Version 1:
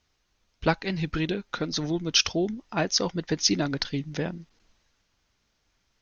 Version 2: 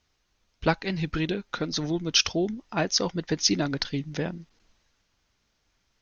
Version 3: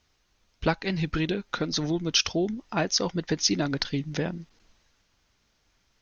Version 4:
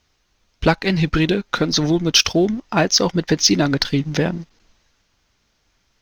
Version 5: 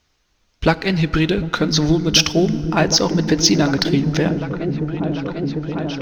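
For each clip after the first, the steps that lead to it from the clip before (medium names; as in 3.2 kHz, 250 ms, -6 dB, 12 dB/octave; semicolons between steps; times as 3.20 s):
no audible change
compression 1.5:1, threshold -30 dBFS, peak gain reduction 5 dB; trim +3 dB
waveshaping leveller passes 1; trim +6 dB
delay with an opening low-pass 749 ms, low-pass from 200 Hz, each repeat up 1 oct, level -3 dB; FDN reverb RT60 3.2 s, high-frequency decay 0.5×, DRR 15.5 dB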